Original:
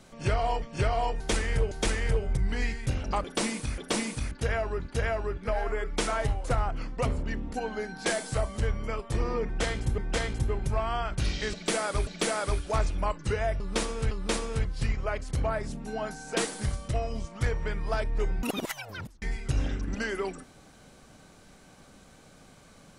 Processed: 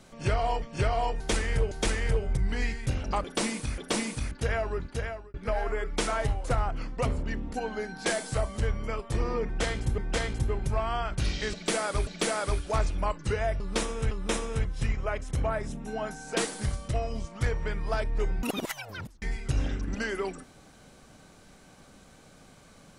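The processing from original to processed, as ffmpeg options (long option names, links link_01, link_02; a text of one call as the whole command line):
ffmpeg -i in.wav -filter_complex "[0:a]asettb=1/sr,asplit=3[link_01][link_02][link_03];[link_01]atrim=end=13.814[link_04];[link_02]atrim=start=13.81:end=16.23,asetpts=PTS-STARTPTS,afade=type=in:duration=0.004:curve=qsin,afade=type=out:start_time=2.416:duration=0.004:curve=qsin,bandreject=frequency=4500:width=5.1[link_05];[link_03]atrim=start=16.226[link_06];[link_04][link_05]acrossfade=duration=0.004:curve1=hsin:curve2=qsin[link_07];[link_07][link_06]acrossfade=duration=0.004:curve1=qsin:curve2=hsin,asplit=2[link_08][link_09];[link_08]atrim=end=5.34,asetpts=PTS-STARTPTS,afade=type=out:start_time=4.82:duration=0.52[link_10];[link_09]atrim=start=5.34,asetpts=PTS-STARTPTS,afade=type=in:duration=0.004:curve=hsin[link_11];[link_10][link_11]concat=n=2:v=0:a=1" out.wav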